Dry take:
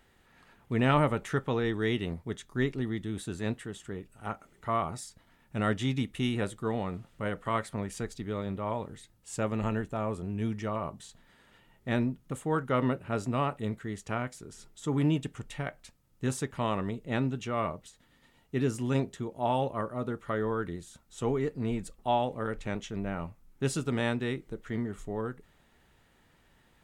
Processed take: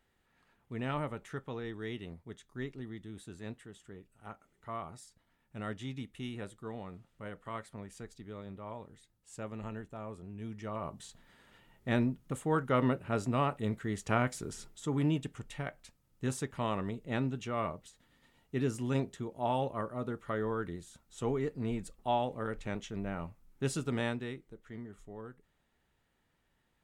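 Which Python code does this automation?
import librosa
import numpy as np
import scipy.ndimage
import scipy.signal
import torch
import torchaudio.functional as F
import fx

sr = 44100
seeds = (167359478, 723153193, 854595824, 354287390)

y = fx.gain(x, sr, db=fx.line((10.44, -11.0), (11.03, -1.0), (13.61, -1.0), (14.48, 6.0), (14.91, -3.5), (24.01, -3.5), (24.5, -12.0)))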